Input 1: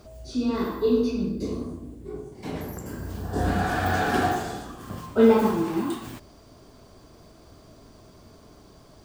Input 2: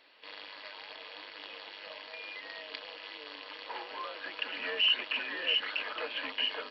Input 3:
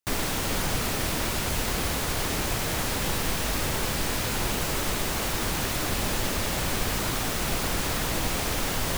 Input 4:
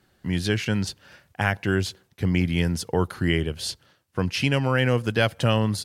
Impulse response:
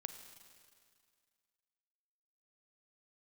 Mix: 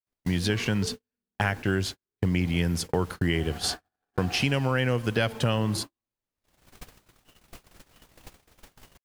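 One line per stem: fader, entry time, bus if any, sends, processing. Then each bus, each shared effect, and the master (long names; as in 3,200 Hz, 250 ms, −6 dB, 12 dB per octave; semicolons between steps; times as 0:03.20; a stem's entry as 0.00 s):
−8.5 dB, 0.00 s, send −5.5 dB, downward compressor 8 to 1, threshold −24 dBFS, peak gain reduction 12.5 dB; low-shelf EQ 210 Hz −8 dB; every ending faded ahead of time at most 110 dB per second
−14.5 dB, 2.45 s, no send, no processing
−6.0 dB, 0.00 s, send −23.5 dB, automatic ducking −16 dB, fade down 0.45 s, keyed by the fourth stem
+1.5 dB, 0.00 s, send −8.5 dB, no processing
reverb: on, RT60 2.1 s, pre-delay 35 ms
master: noise gate −28 dBFS, range −54 dB; downward compressor 2.5 to 1, threshold −24 dBFS, peak gain reduction 8.5 dB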